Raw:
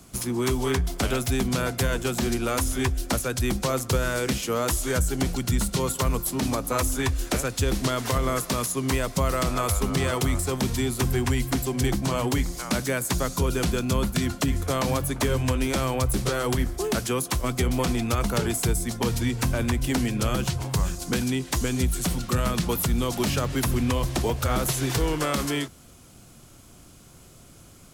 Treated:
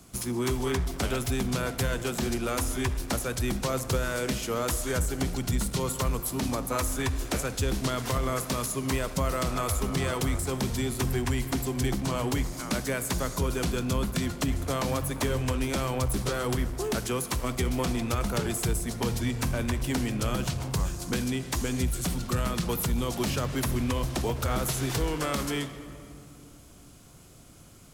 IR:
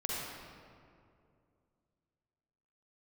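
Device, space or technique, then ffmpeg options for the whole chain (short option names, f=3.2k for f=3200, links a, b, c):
saturated reverb return: -filter_complex "[0:a]asplit=2[a][b];[1:a]atrim=start_sample=2205[c];[b][c]afir=irnorm=-1:irlink=0,asoftclip=type=tanh:threshold=-22dB,volume=-9.5dB[d];[a][d]amix=inputs=2:normalize=0,volume=-5dB"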